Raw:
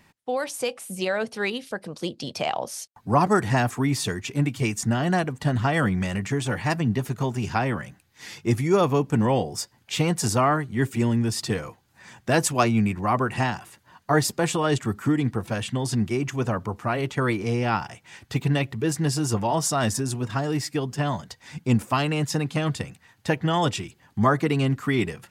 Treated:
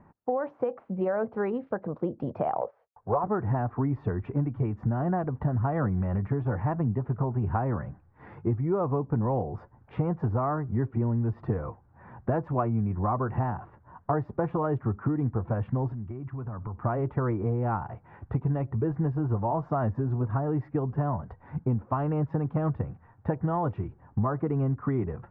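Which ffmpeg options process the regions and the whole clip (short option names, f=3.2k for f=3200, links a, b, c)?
-filter_complex "[0:a]asettb=1/sr,asplit=3[a][b][c];[a]atrim=end=2.614[d];[b]atrim=start=2.61:end=3.24,asetpts=PTS-STARTPTS,afade=t=in:d=0.004:c=qsin,afade=t=out:st=0.626:d=0.004:c=qsin,lowpass=3.5k,agate=range=-9dB:threshold=-46dB:ratio=16:release=100:detection=peak,lowshelf=f=360:t=q:w=3:g=-8[e];[c]atrim=start=3.236[f];[d][e]acrossfade=d=0.004:c1=hsin:c2=qsin[g];[g][f]acrossfade=d=0.004:c1=qsin:c2=hsin,asettb=1/sr,asplit=3[h][i][j];[h]atrim=end=15.924[k];[i]atrim=start=15.92:end=16.84,asetpts=PTS-STARTPTS,afade=t=in:d=0.004:c=qsin,afade=t=out:st=0.916:d=0.004:c=qsin,equalizer=f=520:w=1.2:g=-8,acompressor=threshold=-36dB:ratio=16:attack=3.2:release=140:knee=1:detection=peak[l];[j]atrim=start=16.836[m];[k][l]acrossfade=d=0.004:c1=hsin:c2=qsin[n];[n][m]acrossfade=d=0.004:c1=qsin:c2=hsin,lowpass=f=1.2k:w=0.5412,lowpass=f=1.2k:w=1.3066,asubboost=boost=3:cutoff=100,acompressor=threshold=-28dB:ratio=6,volume=4dB"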